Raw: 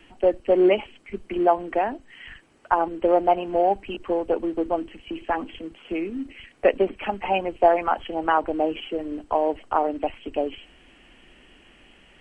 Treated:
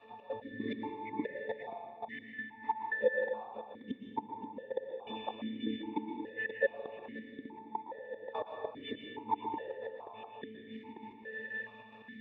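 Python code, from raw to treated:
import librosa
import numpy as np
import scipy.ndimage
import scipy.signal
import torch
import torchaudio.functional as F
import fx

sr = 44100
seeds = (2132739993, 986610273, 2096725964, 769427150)

p1 = fx.phase_scramble(x, sr, seeds[0], window_ms=50)
p2 = fx.tilt_shelf(p1, sr, db=-5.0, hz=1200.0)
p3 = fx.over_compress(p2, sr, threshold_db=-28.0, ratio=-0.5)
p4 = p2 + F.gain(torch.from_numpy(p3), 3.0).numpy()
p5 = fx.leveller(p4, sr, passes=5)
p6 = fx.octave_resonator(p5, sr, note='A', decay_s=0.44)
p7 = fx.step_gate(p6, sr, bpm=151, pattern='xx.x..xxx', floor_db=-24.0, edge_ms=4.5)
p8 = fx.gate_flip(p7, sr, shuts_db=-25.0, range_db=-27)
p9 = p8 + fx.echo_single(p8, sr, ms=531, db=-6.5, dry=0)
p10 = fx.rev_plate(p9, sr, seeds[1], rt60_s=1.4, hf_ratio=0.95, predelay_ms=105, drr_db=2.5)
p11 = fx.vowel_held(p10, sr, hz=2.4)
y = F.gain(torch.from_numpy(p11), 14.0).numpy()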